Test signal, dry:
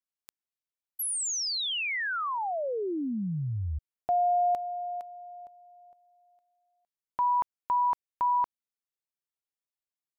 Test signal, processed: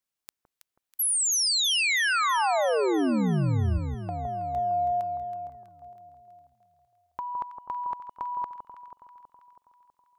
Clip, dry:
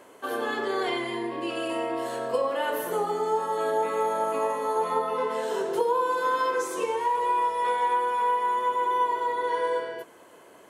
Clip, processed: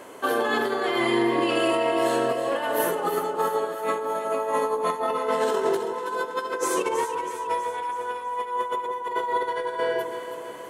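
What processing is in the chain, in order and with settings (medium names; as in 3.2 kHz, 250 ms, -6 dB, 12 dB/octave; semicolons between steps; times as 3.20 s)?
compressor with a negative ratio -30 dBFS, ratio -0.5; echo whose repeats swap between lows and highs 162 ms, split 1.2 kHz, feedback 75%, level -6.5 dB; trim +4 dB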